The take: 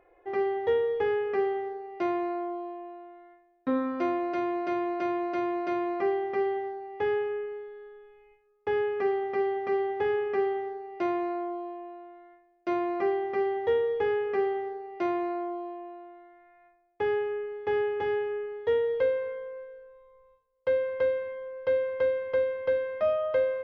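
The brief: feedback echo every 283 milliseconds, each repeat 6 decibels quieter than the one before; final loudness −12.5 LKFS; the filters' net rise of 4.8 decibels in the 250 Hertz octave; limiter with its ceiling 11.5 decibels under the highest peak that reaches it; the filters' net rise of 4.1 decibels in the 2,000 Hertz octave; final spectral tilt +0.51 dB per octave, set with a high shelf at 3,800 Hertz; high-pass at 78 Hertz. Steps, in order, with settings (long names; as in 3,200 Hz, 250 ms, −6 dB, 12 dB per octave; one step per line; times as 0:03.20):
high-pass filter 78 Hz
parametric band 250 Hz +8 dB
parametric band 2,000 Hz +6.5 dB
high-shelf EQ 3,800 Hz −7.5 dB
brickwall limiter −24.5 dBFS
repeating echo 283 ms, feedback 50%, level −6 dB
level +18.5 dB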